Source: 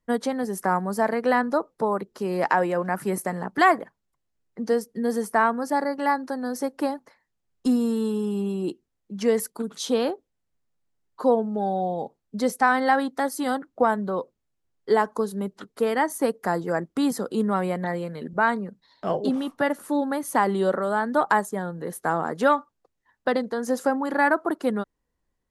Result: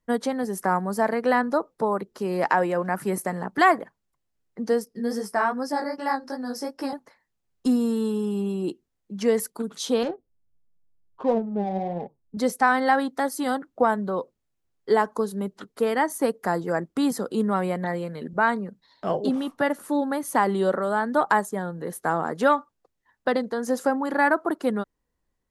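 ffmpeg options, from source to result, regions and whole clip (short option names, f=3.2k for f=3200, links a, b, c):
-filter_complex "[0:a]asettb=1/sr,asplit=3[a][b][c];[a]atrim=end=4.854[d];[b]atrim=start=4.85:end=6.93,asetpts=PTS-STARTPTS,afade=t=in:d=0.004:c=qsin,afade=t=out:st=2.076:d=0.004:c=qsin,equalizer=f=5.2k:w=6.8:g=14.5,flanger=delay=15:depth=5.9:speed=2.5[e];[c]atrim=start=6.926[f];[d][e]acrossfade=d=0.004:c1=hsin:c2=qsin[g];[g][f]acrossfade=d=0.004:c1=qsin:c2=hsin,asettb=1/sr,asplit=3[h][i][j];[h]atrim=end=10.034[k];[i]atrim=start=10.03:end=12.37,asetpts=PTS-STARTPTS,afade=t=in:d=0.004:c=qsin,afade=t=out:st=2.336:d=0.004:c=qsin,lowshelf=f=160:g=11.5,flanger=delay=4.3:depth=7.8:regen=51:speed=1.5:shape=triangular,adynamicsmooth=sensitivity=5:basefreq=1.2k[l];[j]atrim=start=12.366[m];[k][l]acrossfade=d=0.004:c1=hsin:c2=qsin[n];[n][m]acrossfade=d=0.004:c1=qsin:c2=hsin"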